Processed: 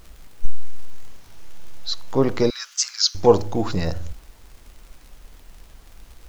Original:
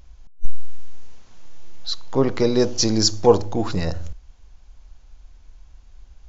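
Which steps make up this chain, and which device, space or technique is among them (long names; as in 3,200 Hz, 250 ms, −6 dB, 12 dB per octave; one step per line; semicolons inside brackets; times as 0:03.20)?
warped LP (wow of a warped record 33 1/3 rpm, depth 160 cents; surface crackle; pink noise bed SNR 35 dB)
0:02.50–0:03.15: elliptic high-pass filter 1,300 Hz, stop band 80 dB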